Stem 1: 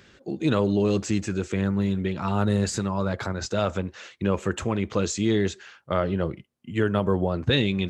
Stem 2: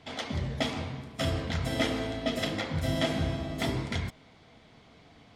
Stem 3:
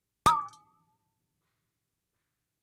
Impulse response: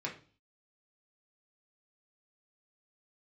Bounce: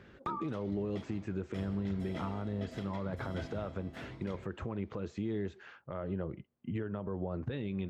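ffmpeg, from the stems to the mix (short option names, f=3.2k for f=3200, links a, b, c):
-filter_complex "[0:a]lowpass=f=1.7k:p=1,acompressor=threshold=-32dB:ratio=6,volume=0dB[a];[1:a]dynaudnorm=f=630:g=3:m=3.5dB,adelay=350,volume=-19.5dB[b];[2:a]volume=-5dB[c];[a][c]amix=inputs=2:normalize=0,acrossover=split=4200[d][e];[e]acompressor=threshold=-57dB:ratio=4:attack=1:release=60[f];[d][f]amix=inputs=2:normalize=0,alimiter=level_in=3dB:limit=-24dB:level=0:latency=1:release=104,volume=-3dB,volume=0dB[g];[b][g]amix=inputs=2:normalize=0,highshelf=f=3.2k:g=-8"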